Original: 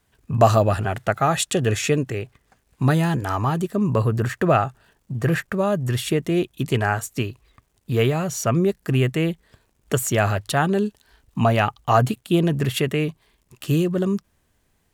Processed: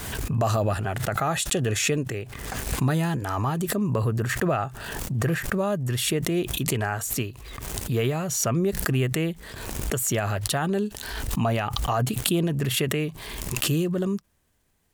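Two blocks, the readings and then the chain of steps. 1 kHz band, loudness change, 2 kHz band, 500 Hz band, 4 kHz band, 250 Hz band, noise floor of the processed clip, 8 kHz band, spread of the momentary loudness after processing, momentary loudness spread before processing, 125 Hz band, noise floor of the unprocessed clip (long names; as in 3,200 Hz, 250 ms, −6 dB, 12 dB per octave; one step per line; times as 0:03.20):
−6.5 dB, −4.0 dB, −2.5 dB, −5.5 dB, +1.0 dB, −4.0 dB, −48 dBFS, +3.0 dB, 9 LU, 9 LU, −4.0 dB, −67 dBFS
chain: high-shelf EQ 6,400 Hz +4.5 dB
boost into a limiter +9.5 dB
background raised ahead of every attack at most 35 dB per second
level −14 dB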